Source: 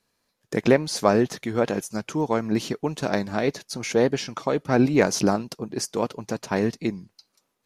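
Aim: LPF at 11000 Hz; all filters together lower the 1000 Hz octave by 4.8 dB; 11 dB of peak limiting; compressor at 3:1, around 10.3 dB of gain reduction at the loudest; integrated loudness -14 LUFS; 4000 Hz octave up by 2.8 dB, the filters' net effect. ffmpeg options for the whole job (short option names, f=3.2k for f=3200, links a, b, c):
-af "lowpass=11k,equalizer=f=1k:t=o:g=-7,equalizer=f=4k:t=o:g=4,acompressor=threshold=-28dB:ratio=3,volume=22dB,alimiter=limit=-3dB:level=0:latency=1"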